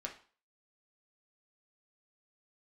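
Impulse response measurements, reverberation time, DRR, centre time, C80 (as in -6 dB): 0.40 s, -0.5 dB, 15 ms, 15.5 dB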